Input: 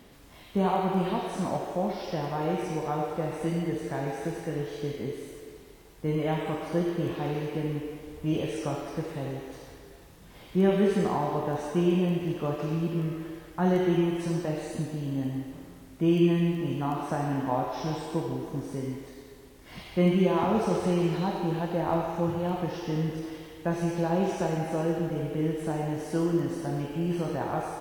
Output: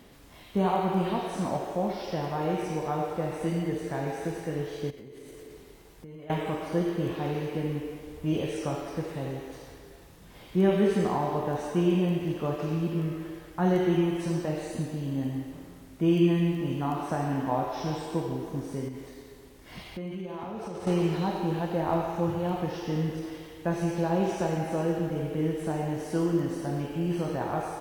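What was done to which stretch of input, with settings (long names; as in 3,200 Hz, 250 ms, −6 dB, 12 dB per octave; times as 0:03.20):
0:04.90–0:06.30: downward compressor 16 to 1, threshold −41 dBFS
0:18.88–0:20.87: downward compressor, threshold −34 dBFS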